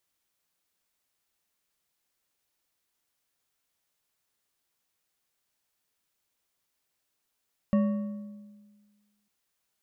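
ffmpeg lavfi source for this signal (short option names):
-f lavfi -i "aevalsrc='0.112*pow(10,-3*t/1.58)*sin(2*PI*207*t)+0.0398*pow(10,-3*t/1.166)*sin(2*PI*570.7*t)+0.0141*pow(10,-3*t/0.952)*sin(2*PI*1118.6*t)+0.00501*pow(10,-3*t/0.819)*sin(2*PI*1849.1*t)+0.00178*pow(10,-3*t/0.726)*sin(2*PI*2761.4*t)':d=1.55:s=44100"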